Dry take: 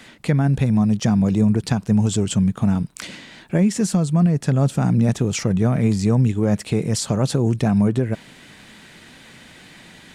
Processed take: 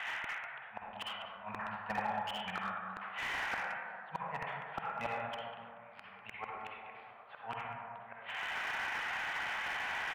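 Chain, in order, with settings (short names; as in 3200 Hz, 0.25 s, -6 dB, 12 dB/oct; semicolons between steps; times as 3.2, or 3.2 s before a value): tracing distortion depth 0.063 ms; elliptic band-pass 750–3000 Hz, stop band 40 dB; compressor 6:1, threshold -34 dBFS, peak gain reduction 8.5 dB; flipped gate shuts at -30 dBFS, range -32 dB; air absorption 160 m; echo 0.196 s -13.5 dB; reverb RT60 2.2 s, pre-delay 43 ms, DRR -3 dB; slew limiter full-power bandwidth 12 Hz; gain +9 dB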